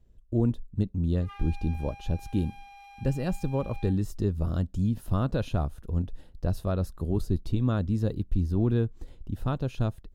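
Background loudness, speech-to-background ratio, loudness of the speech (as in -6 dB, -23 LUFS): -49.0 LUFS, 19.5 dB, -29.5 LUFS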